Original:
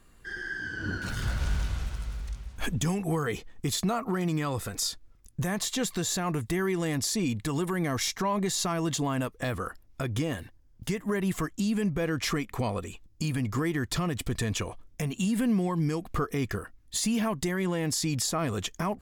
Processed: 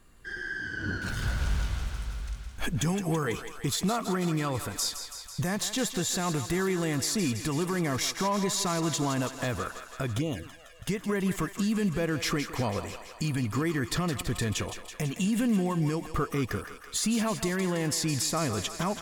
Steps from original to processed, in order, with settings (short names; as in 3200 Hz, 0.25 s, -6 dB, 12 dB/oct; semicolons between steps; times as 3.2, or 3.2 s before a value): thinning echo 0.165 s, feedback 74%, high-pass 520 Hz, level -9.5 dB; 10.18–10.86 envelope flanger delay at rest 2.3 ms, full sweep at -25 dBFS